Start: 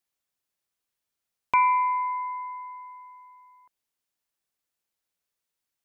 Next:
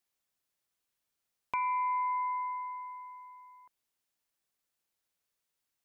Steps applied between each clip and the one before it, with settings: limiter -22 dBFS, peak gain reduction 10 dB; compressor, threshold -29 dBFS, peak gain reduction 4.5 dB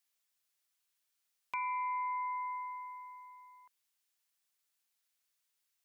tilt shelf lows -7 dB, about 860 Hz; in parallel at -3 dB: limiter -31 dBFS, peak gain reduction 11 dB; on the sum: gain -8.5 dB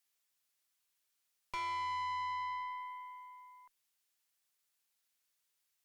tube stage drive 39 dB, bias 0.65; gain +4 dB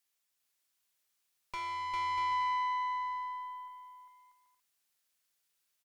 bouncing-ball echo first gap 0.4 s, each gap 0.6×, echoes 5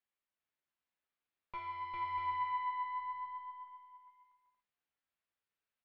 flange 0.52 Hz, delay 8.2 ms, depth 7.4 ms, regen +46%; air absorption 450 m; gain +1.5 dB

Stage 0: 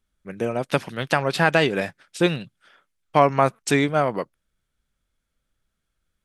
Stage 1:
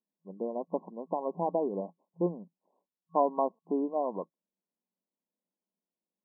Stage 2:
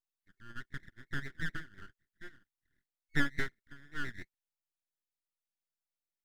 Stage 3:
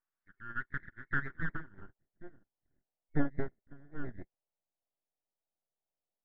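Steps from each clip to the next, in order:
FFT band-pass 170–1100 Hz; gain -9 dB
rippled Chebyshev high-pass 700 Hz, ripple 3 dB; full-wave rectifier; gain +2.5 dB
low-pass sweep 1500 Hz -> 690 Hz, 1.11–2.09; gain +2 dB

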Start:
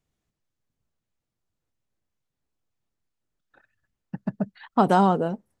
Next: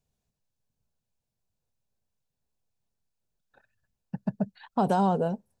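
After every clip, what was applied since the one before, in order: thirty-one-band EQ 315 Hz -11 dB, 1250 Hz -9 dB, 2000 Hz -10 dB, 3150 Hz -4 dB; limiter -16 dBFS, peak gain reduction 6 dB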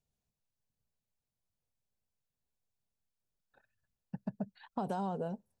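compressor, threshold -26 dBFS, peak gain reduction 6 dB; gain -6.5 dB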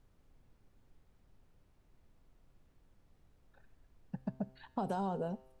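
added noise brown -64 dBFS; resonator 130 Hz, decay 0.93 s, harmonics all, mix 50%; gain +5.5 dB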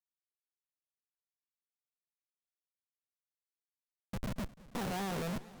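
stepped spectrum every 50 ms; Schmitt trigger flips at -45 dBFS; warbling echo 0.219 s, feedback 78%, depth 192 cents, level -20 dB; gain +10 dB

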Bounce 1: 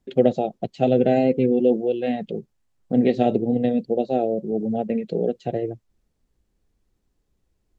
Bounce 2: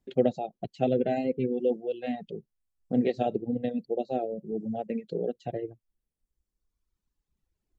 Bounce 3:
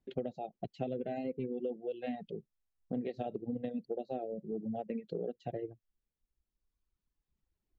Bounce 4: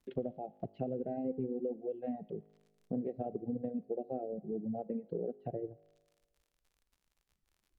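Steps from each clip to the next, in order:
reverb removal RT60 1.8 s; gain -6 dB
compressor 12:1, threshold -29 dBFS, peak gain reduction 12.5 dB; air absorption 91 m; gain -3.5 dB
crackle 65/s -58 dBFS; treble ducked by the level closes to 790 Hz, closed at -38.5 dBFS; resonator 52 Hz, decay 1.4 s, harmonics all, mix 40%; gain +4.5 dB

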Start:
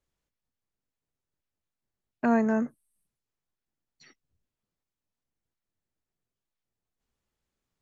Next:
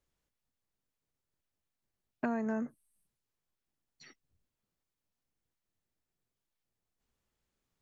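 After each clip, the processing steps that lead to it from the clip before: compressor 5:1, threshold -31 dBFS, peak gain reduction 12 dB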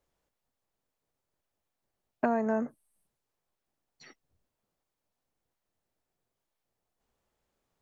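bell 670 Hz +8.5 dB 1.8 oct; gain +1 dB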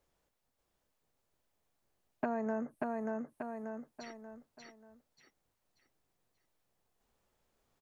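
on a send: feedback echo 0.585 s, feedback 33%, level -4 dB; on the sum: compressor 2:1, threshold -40 dBFS, peak gain reduction 10 dB; gain +1.5 dB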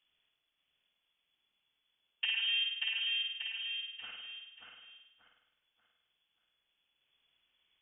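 inverted band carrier 3400 Hz; flutter echo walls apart 8.9 m, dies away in 0.92 s; gain -1 dB

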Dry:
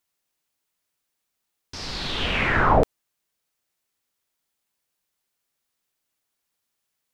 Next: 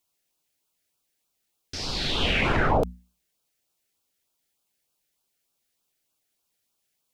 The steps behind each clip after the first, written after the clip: notches 60/120/180/240 Hz; LFO notch sine 3.3 Hz 980–2000 Hz; limiter -15.5 dBFS, peak gain reduction 9.5 dB; gain +2.5 dB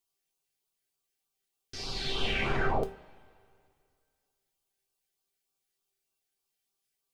resonator 390 Hz, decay 0.21 s, harmonics all, mix 80%; two-slope reverb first 0.24 s, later 2.3 s, from -22 dB, DRR 8.5 dB; gain +3 dB

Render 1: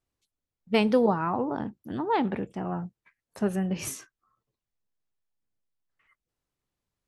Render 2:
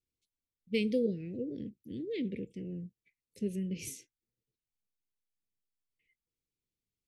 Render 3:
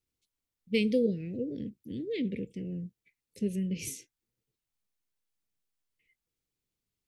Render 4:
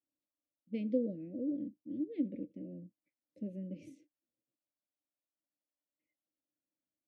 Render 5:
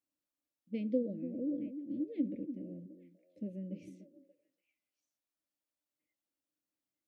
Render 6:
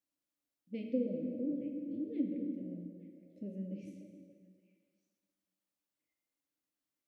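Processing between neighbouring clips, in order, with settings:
Chebyshev band-stop 500–2100 Hz, order 4; gain -7 dB
dynamic EQ 350 Hz, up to -4 dB, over -50 dBFS, Q 3.6; gain +4 dB
double band-pass 420 Hz, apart 0.94 oct; gain +4.5 dB
delay with a stepping band-pass 0.29 s, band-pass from 290 Hz, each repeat 1.4 oct, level -8 dB
plate-style reverb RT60 1.9 s, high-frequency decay 0.8×, DRR 2.5 dB; gain -2 dB

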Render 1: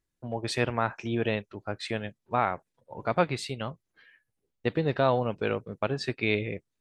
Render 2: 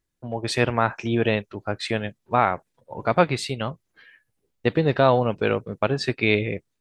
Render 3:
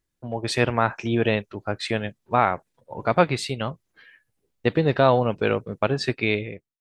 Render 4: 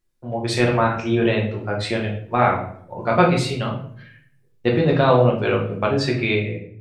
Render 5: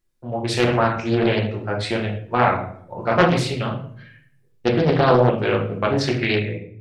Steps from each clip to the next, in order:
AGC gain up to 3.5 dB; gain +3 dB
ending faded out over 0.70 s
shoebox room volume 88 m³, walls mixed, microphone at 0.92 m; gain -1 dB
Doppler distortion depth 0.55 ms

